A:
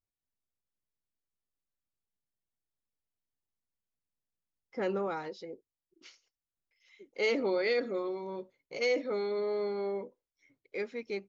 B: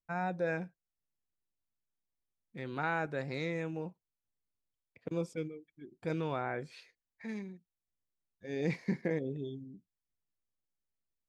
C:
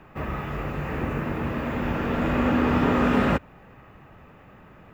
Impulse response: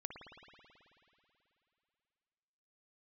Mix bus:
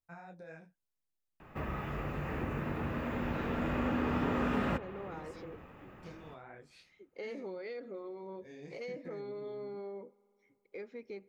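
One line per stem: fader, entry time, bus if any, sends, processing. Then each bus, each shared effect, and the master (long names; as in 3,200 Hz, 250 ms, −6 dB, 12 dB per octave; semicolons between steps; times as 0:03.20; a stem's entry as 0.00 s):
−3.5 dB, 0.00 s, send −17.5 dB, high-shelf EQ 2,400 Hz −9.5 dB; downward compressor 3 to 1, threshold −39 dBFS, peak gain reduction 10 dB
−4.5 dB, 0.00 s, no send, high-shelf EQ 4,900 Hz +6.5 dB; downward compressor 3 to 1, threshold −40 dBFS, peak gain reduction 10 dB; micro pitch shift up and down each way 42 cents
−6.5 dB, 1.40 s, send −8 dB, no processing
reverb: on, RT60 2.9 s, pre-delay 54 ms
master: downward compressor 1.5 to 1, threshold −39 dBFS, peak gain reduction 6.5 dB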